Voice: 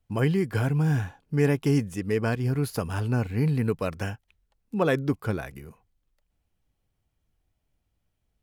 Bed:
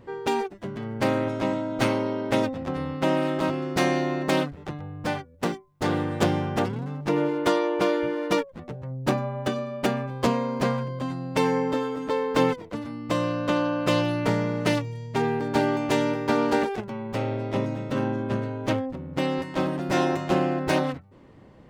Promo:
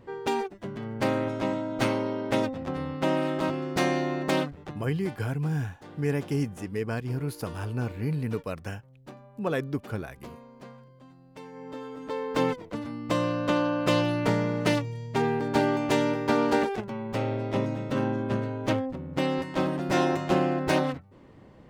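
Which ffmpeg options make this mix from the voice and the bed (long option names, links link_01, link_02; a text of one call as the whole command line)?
ffmpeg -i stem1.wav -i stem2.wav -filter_complex "[0:a]adelay=4650,volume=-5dB[link_01];[1:a]volume=18.5dB,afade=type=out:start_time=4.48:duration=0.71:silence=0.105925,afade=type=in:start_time=11.52:duration=1.33:silence=0.0891251[link_02];[link_01][link_02]amix=inputs=2:normalize=0" out.wav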